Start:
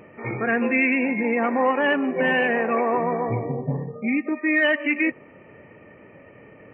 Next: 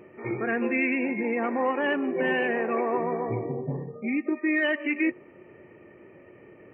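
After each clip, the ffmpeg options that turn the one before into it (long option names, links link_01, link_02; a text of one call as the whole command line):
ffmpeg -i in.wav -af "equalizer=frequency=360:width=6:gain=13.5,volume=-6dB" out.wav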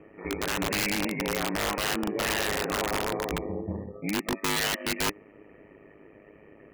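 ffmpeg -i in.wav -af "aeval=exprs='val(0)*sin(2*PI*51*n/s)':channel_layout=same,aeval=exprs='(mod(11.9*val(0)+1,2)-1)/11.9':channel_layout=same,volume=1dB" out.wav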